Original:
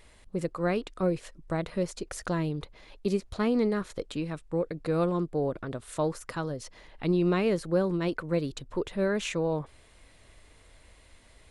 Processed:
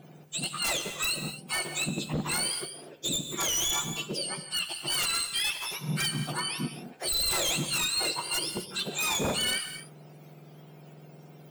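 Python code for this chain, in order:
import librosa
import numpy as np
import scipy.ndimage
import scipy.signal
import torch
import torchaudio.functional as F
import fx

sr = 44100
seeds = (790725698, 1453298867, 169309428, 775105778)

y = fx.octave_mirror(x, sr, pivot_hz=1200.0)
y = 10.0 ** (-28.5 / 20.0) * (np.abs((y / 10.0 ** (-28.5 / 20.0) + 3.0) % 4.0 - 2.0) - 1.0)
y = fx.rev_gated(y, sr, seeds[0], gate_ms=280, shape='flat', drr_db=7.5)
y = F.gain(torch.from_numpy(y), 5.0).numpy()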